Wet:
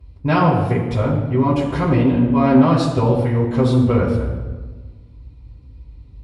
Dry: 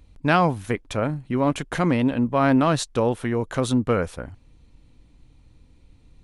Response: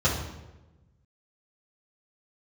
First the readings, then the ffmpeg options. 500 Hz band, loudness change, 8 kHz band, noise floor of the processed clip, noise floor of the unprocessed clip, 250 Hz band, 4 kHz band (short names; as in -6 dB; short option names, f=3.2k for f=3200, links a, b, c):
+4.5 dB, +5.5 dB, n/a, -43 dBFS, -55 dBFS, +6.0 dB, 0.0 dB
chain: -filter_complex "[1:a]atrim=start_sample=2205,asetrate=33075,aresample=44100[a];[0:a][a]afir=irnorm=-1:irlink=0,volume=-13.5dB"